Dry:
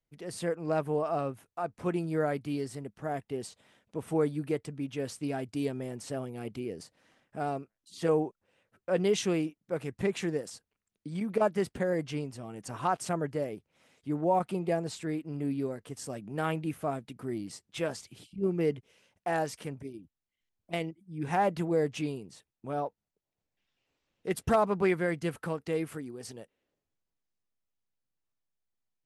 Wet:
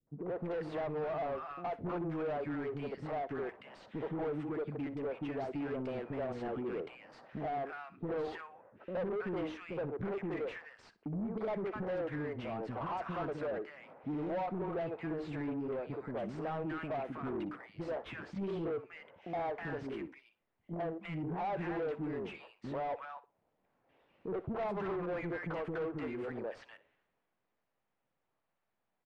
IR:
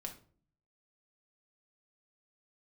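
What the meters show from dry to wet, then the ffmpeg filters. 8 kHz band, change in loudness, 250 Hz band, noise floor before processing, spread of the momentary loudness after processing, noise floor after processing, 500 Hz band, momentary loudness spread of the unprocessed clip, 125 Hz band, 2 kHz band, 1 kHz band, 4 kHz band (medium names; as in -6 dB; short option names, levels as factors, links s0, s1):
under -25 dB, -6.5 dB, -5.5 dB, under -85 dBFS, 8 LU, -84 dBFS, -5.5 dB, 14 LU, -6.5 dB, -4.5 dB, -5.5 dB, -11.0 dB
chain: -filter_complex "[0:a]acompressor=threshold=0.00708:ratio=3,acrossover=split=340|1300[s0][s1][s2];[s1]adelay=70[s3];[s2]adelay=320[s4];[s0][s3][s4]amix=inputs=3:normalize=0,asplit=2[s5][s6];[s6]highpass=f=720:p=1,volume=20,asoftclip=type=tanh:threshold=0.0355[s7];[s5][s7]amix=inputs=2:normalize=0,lowpass=f=1800:p=1,volume=0.501,adynamicsmooth=sensitivity=2:basefreq=1900,asplit=2[s8][s9];[s9]aecho=0:1:61|122:0.133|0.0333[s10];[s8][s10]amix=inputs=2:normalize=0,volume=1.12"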